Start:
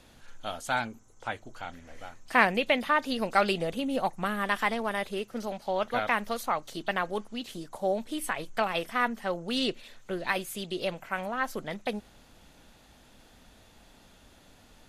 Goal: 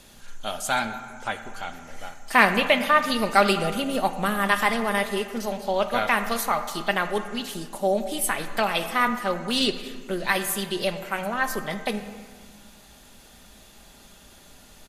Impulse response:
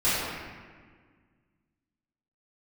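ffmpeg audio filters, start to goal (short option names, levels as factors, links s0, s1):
-filter_complex "[0:a]aemphasis=mode=production:type=cd,aecho=1:1:5:0.31,asplit=2[s0][s1];[s1]equalizer=f=1200:w=1.5:g=3[s2];[1:a]atrim=start_sample=2205,adelay=13[s3];[s2][s3]afir=irnorm=-1:irlink=0,volume=0.0596[s4];[s0][s4]amix=inputs=2:normalize=0,volume=1.58"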